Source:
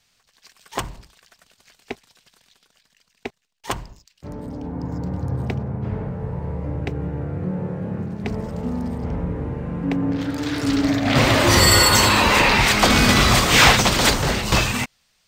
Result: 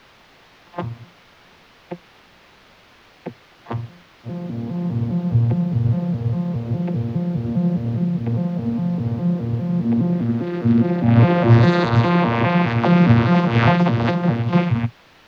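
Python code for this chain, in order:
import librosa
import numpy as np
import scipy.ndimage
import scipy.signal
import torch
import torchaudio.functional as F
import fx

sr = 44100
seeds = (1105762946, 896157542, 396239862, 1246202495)

p1 = fx.vocoder_arp(x, sr, chord='bare fifth', root=46, every_ms=204)
p2 = fx.quant_dither(p1, sr, seeds[0], bits=6, dither='triangular')
p3 = p1 + (p2 * 10.0 ** (-3.5 / 20.0))
p4 = fx.air_absorb(p3, sr, metres=290.0)
y = p4 * 10.0 ** (-1.0 / 20.0)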